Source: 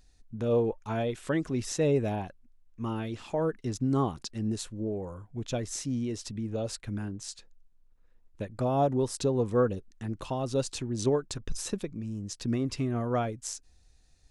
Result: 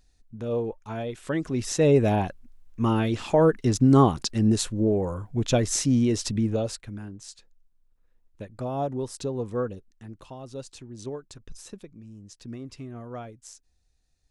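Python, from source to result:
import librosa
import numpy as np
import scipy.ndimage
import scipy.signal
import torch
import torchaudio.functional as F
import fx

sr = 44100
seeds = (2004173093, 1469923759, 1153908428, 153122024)

y = fx.gain(x, sr, db=fx.line((1.04, -2.0), (2.25, 10.0), (6.44, 10.0), (6.92, -3.0), (9.55, -3.0), (10.3, -9.0)))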